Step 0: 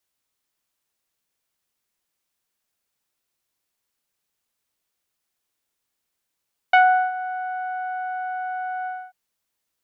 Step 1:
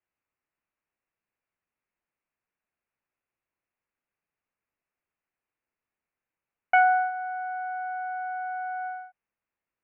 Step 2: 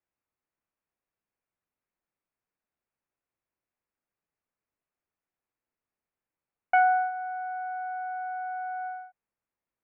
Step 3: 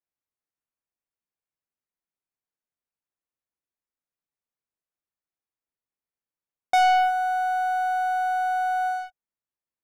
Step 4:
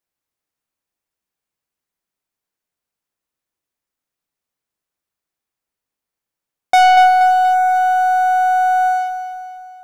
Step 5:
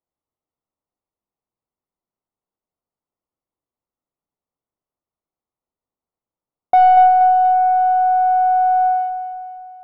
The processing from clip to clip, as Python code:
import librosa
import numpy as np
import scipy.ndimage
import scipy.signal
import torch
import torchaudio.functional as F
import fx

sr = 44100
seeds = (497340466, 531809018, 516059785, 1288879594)

y1 = scipy.signal.sosfilt(scipy.signal.butter(12, 2700.0, 'lowpass', fs=sr, output='sos'), x)
y1 = F.gain(torch.from_numpy(y1), -4.0).numpy()
y2 = fx.high_shelf(y1, sr, hz=2200.0, db=-11.0)
y3 = fx.leveller(y2, sr, passes=3)
y3 = F.gain(torch.from_numpy(y3), -1.5).numpy()
y4 = fx.echo_feedback(y3, sr, ms=238, feedback_pct=51, wet_db=-9.5)
y4 = F.gain(torch.from_numpy(y4), 8.5).numpy()
y5 = scipy.signal.savgol_filter(y4, 65, 4, mode='constant')